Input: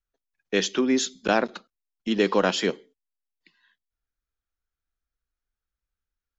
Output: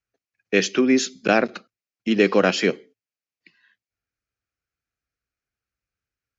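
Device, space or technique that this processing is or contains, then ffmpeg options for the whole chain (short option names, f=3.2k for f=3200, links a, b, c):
car door speaker: -af "highpass=87,equalizer=f=110:t=q:w=4:g=8,equalizer=f=950:t=q:w=4:g=-9,equalizer=f=2.4k:t=q:w=4:g=5,equalizer=f=3.5k:t=q:w=4:g=-8,lowpass=f=6.6k:w=0.5412,lowpass=f=6.6k:w=1.3066,volume=4.5dB"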